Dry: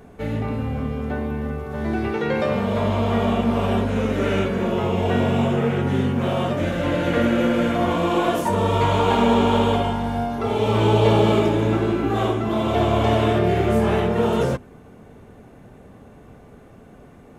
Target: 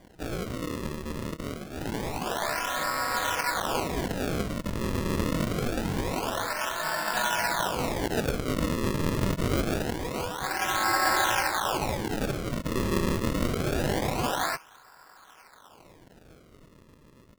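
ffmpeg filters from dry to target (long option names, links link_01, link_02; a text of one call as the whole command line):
ffmpeg -i in.wav -af "aeval=exprs='val(0)*sin(2*PI*1200*n/s)':channel_layout=same,acrusher=samples=33:mix=1:aa=0.000001:lfo=1:lforange=52.8:lforate=0.25,volume=-5.5dB" out.wav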